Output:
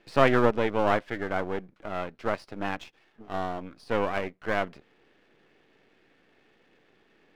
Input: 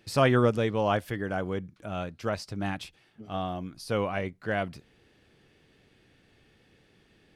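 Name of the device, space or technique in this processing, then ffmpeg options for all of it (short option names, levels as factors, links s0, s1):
crystal radio: -af "highpass=270,lowpass=2600,aeval=exprs='if(lt(val(0),0),0.251*val(0),val(0))':c=same,volume=1.88"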